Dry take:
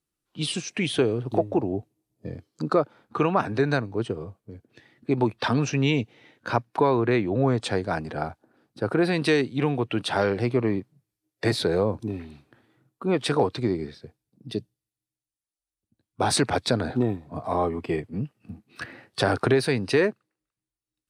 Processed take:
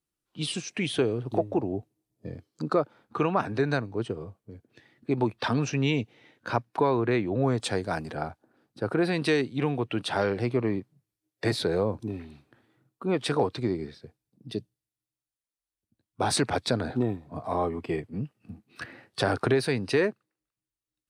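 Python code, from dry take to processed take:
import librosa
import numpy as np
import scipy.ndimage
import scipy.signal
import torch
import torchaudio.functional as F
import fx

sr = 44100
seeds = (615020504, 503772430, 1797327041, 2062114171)

y = fx.high_shelf(x, sr, hz=fx.line((7.41, 7900.0), (8.14, 5600.0)), db=10.0, at=(7.41, 8.14), fade=0.02)
y = y * 10.0 ** (-3.0 / 20.0)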